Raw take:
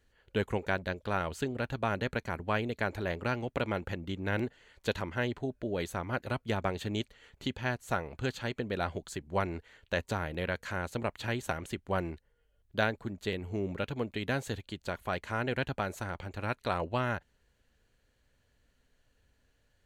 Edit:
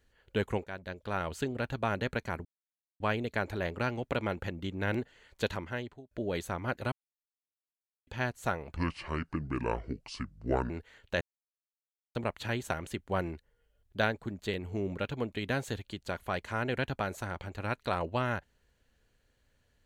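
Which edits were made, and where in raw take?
0.64–1.33 fade in, from -14 dB
2.45 insert silence 0.55 s
4.96–5.56 fade out
6.37–7.52 mute
8.21–9.49 speed 66%
10–10.94 mute

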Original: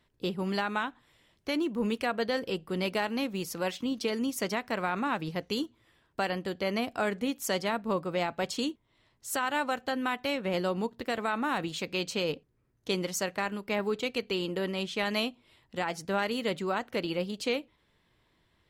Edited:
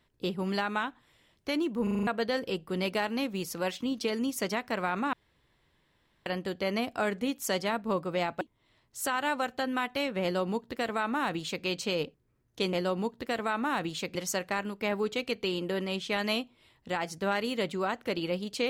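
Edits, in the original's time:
1.83 stutter in place 0.04 s, 6 plays
5.13–6.26 room tone
8.41–8.7 cut
10.52–11.94 copy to 13.02

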